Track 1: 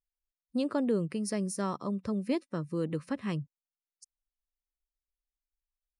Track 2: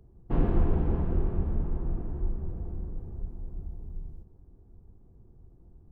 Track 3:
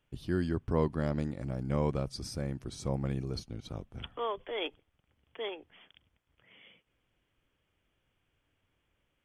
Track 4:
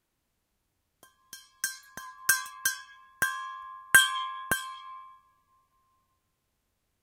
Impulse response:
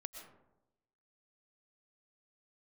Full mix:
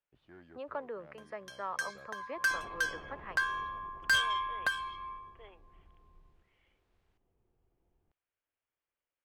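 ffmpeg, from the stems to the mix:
-filter_complex "[0:a]acrossover=split=580 2100:gain=0.2 1 0.0794[link_01][link_02][link_03];[link_01][link_02][link_03]amix=inputs=3:normalize=0,volume=1dB,asplit=2[link_04][link_05];[1:a]acontrast=32,volume=22.5dB,asoftclip=hard,volume=-22.5dB,adelay=2200,volume=-14dB[link_06];[2:a]lowpass=2700,asoftclip=type=tanh:threshold=-23.5dB,volume=-13.5dB[link_07];[3:a]lowpass=11000,adelay=150,volume=1.5dB[link_08];[link_05]apad=whole_len=407511[link_09];[link_07][link_09]sidechaincompress=threshold=-40dB:ratio=8:attack=38:release=242[link_10];[link_04][link_06][link_10][link_08]amix=inputs=4:normalize=0,acrossover=split=440 3900:gain=0.178 1 0.178[link_11][link_12][link_13];[link_11][link_12][link_13]amix=inputs=3:normalize=0,asoftclip=type=tanh:threshold=-22.5dB"

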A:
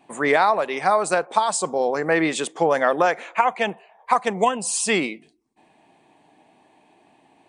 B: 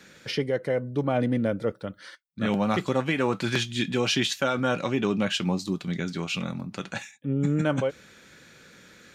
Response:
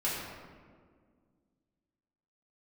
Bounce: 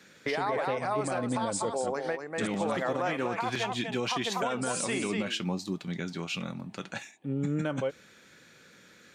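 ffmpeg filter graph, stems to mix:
-filter_complex "[0:a]volume=-8.5dB,asplit=2[link_01][link_02];[link_02]volume=-7dB[link_03];[1:a]highpass=frequency=110:poles=1,volume=-4dB,asplit=2[link_04][link_05];[link_05]apad=whole_len=330294[link_06];[link_01][link_06]sidechaingate=range=-36dB:threshold=-48dB:ratio=16:detection=peak[link_07];[link_03]aecho=0:1:242:1[link_08];[link_07][link_04][link_08]amix=inputs=3:normalize=0,alimiter=limit=-20.5dB:level=0:latency=1:release=86"

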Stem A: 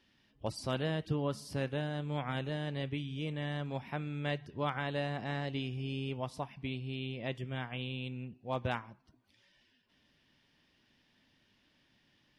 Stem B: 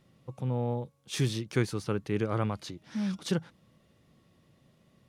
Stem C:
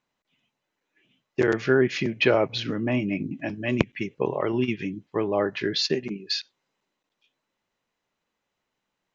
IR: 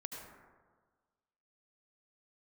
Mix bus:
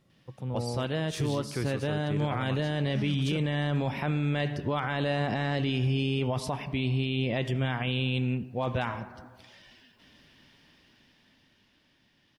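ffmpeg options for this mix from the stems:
-filter_complex "[0:a]dynaudnorm=framelen=240:gausssize=17:maxgain=11dB,adelay=100,volume=2dB,asplit=2[link_01][link_02];[link_02]volume=-14.5dB[link_03];[1:a]volume=-3dB[link_04];[3:a]atrim=start_sample=2205[link_05];[link_03][link_05]afir=irnorm=-1:irlink=0[link_06];[link_01][link_04][link_06]amix=inputs=3:normalize=0,alimiter=limit=-20.5dB:level=0:latency=1:release=17"

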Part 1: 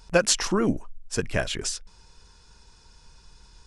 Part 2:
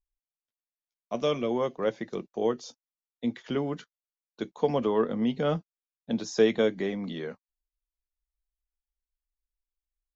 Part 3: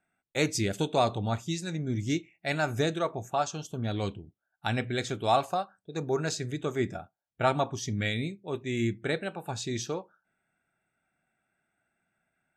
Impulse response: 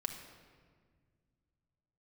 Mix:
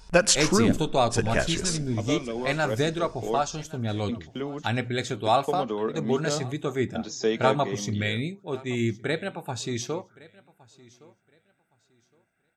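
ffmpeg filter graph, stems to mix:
-filter_complex "[0:a]volume=-0.5dB,asplit=3[link_01][link_02][link_03];[link_02]volume=-13dB[link_04];[link_03]volume=-18dB[link_05];[1:a]highshelf=frequency=5200:gain=10.5,agate=range=-23dB:threshold=-40dB:ratio=16:detection=peak,adelay=850,volume=-3.5dB[link_06];[2:a]volume=2.5dB,asplit=2[link_07][link_08];[link_08]volume=-22.5dB[link_09];[3:a]atrim=start_sample=2205[link_10];[link_04][link_10]afir=irnorm=-1:irlink=0[link_11];[link_05][link_09]amix=inputs=2:normalize=0,aecho=0:1:1115|2230|3345|4460:1|0.22|0.0484|0.0106[link_12];[link_01][link_06][link_07][link_11][link_12]amix=inputs=5:normalize=0"

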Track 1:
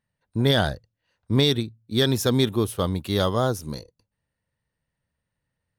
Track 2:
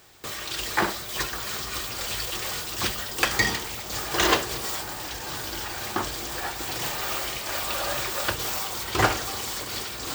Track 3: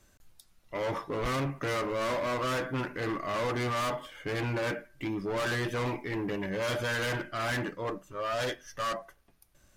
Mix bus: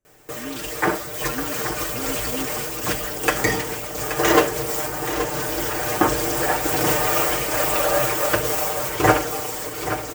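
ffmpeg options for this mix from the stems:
ffmpeg -i stem1.wav -i stem2.wav -i stem3.wav -filter_complex "[0:a]asplit=3[link_01][link_02][link_03];[link_01]bandpass=frequency=270:width_type=q:width=8,volume=0dB[link_04];[link_02]bandpass=frequency=2290:width_type=q:width=8,volume=-6dB[link_05];[link_03]bandpass=frequency=3010:width_type=q:width=8,volume=-9dB[link_06];[link_04][link_05][link_06]amix=inputs=3:normalize=0,volume=-7.5dB[link_07];[1:a]aecho=1:1:6.6:0.69,dynaudnorm=framelen=200:gausssize=13:maxgain=11.5dB,adelay=50,volume=1dB,asplit=2[link_08][link_09];[link_09]volume=-10dB[link_10];[2:a]volume=-19.5dB[link_11];[link_10]aecho=0:1:827:1[link_12];[link_07][link_08][link_11][link_12]amix=inputs=4:normalize=0,equalizer=frequency=500:width_type=o:width=1:gain=6,equalizer=frequency=1000:width_type=o:width=1:gain=-3,equalizer=frequency=4000:width_type=o:width=1:gain=-11" out.wav

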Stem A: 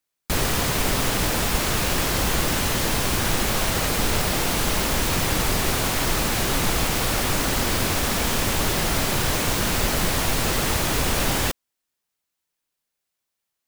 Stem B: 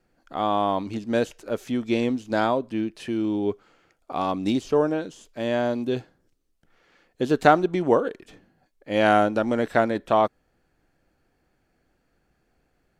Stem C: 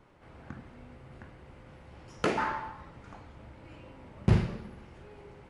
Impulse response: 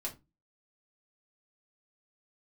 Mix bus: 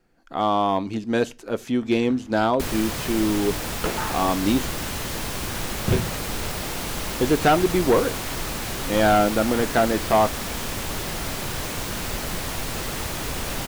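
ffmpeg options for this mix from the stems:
-filter_complex "[0:a]adelay=2300,volume=-6.5dB[link_01];[1:a]bandreject=frequency=590:width=13,volume=2dB,asplit=3[link_02][link_03][link_04];[link_02]atrim=end=4.67,asetpts=PTS-STARTPTS,afade=type=out:start_time=4.666:duration=0.004:curve=hsin[link_05];[link_03]atrim=start=4.67:end=5.92,asetpts=PTS-STARTPTS,volume=0[link_06];[link_04]atrim=start=5.92,asetpts=PTS-STARTPTS,afade=type=in:duration=0.004:curve=hsin[link_07];[link_05][link_06][link_07]concat=n=3:v=0:a=1,asplit=2[link_08][link_09];[link_09]volume=-15.5dB[link_10];[2:a]adelay=1600,volume=0.5dB[link_11];[3:a]atrim=start_sample=2205[link_12];[link_10][link_12]afir=irnorm=-1:irlink=0[link_13];[link_01][link_08][link_11][link_13]amix=inputs=4:normalize=0,volume=12dB,asoftclip=hard,volume=-12dB"

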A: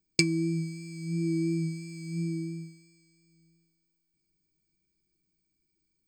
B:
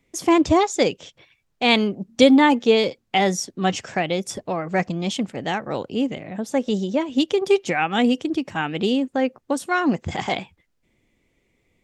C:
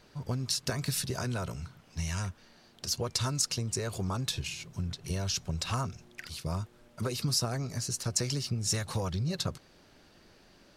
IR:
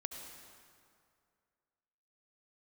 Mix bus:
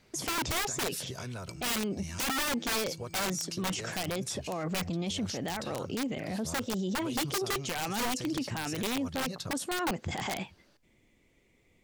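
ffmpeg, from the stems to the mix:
-filter_complex "[0:a]acompressor=threshold=-38dB:ratio=6,adelay=1300,volume=-8dB[link_01];[1:a]volume=-0.5dB[link_02];[2:a]highpass=56,volume=-6.5dB[link_03];[link_01][link_02][link_03]amix=inputs=3:normalize=0,highshelf=frequency=5500:gain=2,aeval=exprs='(mod(5.31*val(0)+1,2)-1)/5.31':channel_layout=same,alimiter=level_in=2dB:limit=-24dB:level=0:latency=1:release=26,volume=-2dB"

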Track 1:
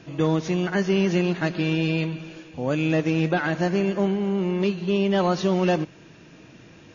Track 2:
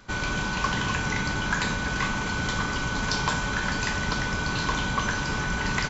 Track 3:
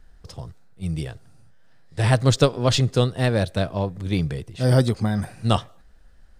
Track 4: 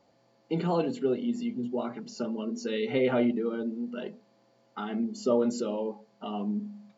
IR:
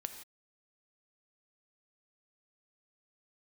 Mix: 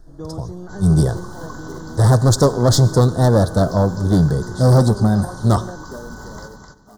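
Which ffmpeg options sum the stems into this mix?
-filter_complex "[0:a]volume=-10dB[link_01];[1:a]adelay=600,volume=-7dB,asplit=2[link_02][link_03];[link_03]volume=-6dB[link_04];[2:a]dynaudnorm=framelen=240:gausssize=7:maxgain=14dB,asoftclip=type=hard:threshold=-13.5dB,volume=2dB,asplit=2[link_05][link_06];[link_06]volume=-5dB[link_07];[3:a]acrusher=bits=2:mode=log:mix=0:aa=0.000001,adelay=650,volume=-9.5dB,asplit=2[link_08][link_09];[link_09]volume=-20.5dB[link_10];[link_01][link_02][link_08]amix=inputs=3:normalize=0,alimiter=limit=-21dB:level=0:latency=1:release=247,volume=0dB[link_11];[4:a]atrim=start_sample=2205[link_12];[link_07][link_12]afir=irnorm=-1:irlink=0[link_13];[link_04][link_10]amix=inputs=2:normalize=0,aecho=0:1:257|514|771|1028:1|0.24|0.0576|0.0138[link_14];[link_05][link_11][link_13][link_14]amix=inputs=4:normalize=0,asuperstop=centerf=2500:order=4:qfactor=0.74"

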